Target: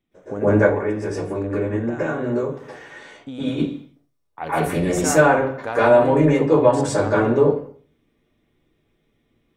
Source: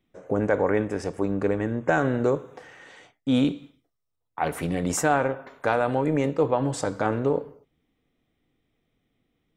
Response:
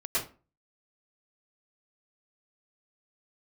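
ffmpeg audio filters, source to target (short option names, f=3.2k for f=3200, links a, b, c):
-filter_complex "[0:a]asplit=3[a][b][c];[a]afade=t=out:st=0.55:d=0.02[d];[b]acompressor=threshold=-27dB:ratio=6,afade=t=in:st=0.55:d=0.02,afade=t=out:st=3.46:d=0.02[e];[c]afade=t=in:st=3.46:d=0.02[f];[d][e][f]amix=inputs=3:normalize=0[g];[1:a]atrim=start_sample=2205,asetrate=39690,aresample=44100[h];[g][h]afir=irnorm=-1:irlink=0,volume=-1dB"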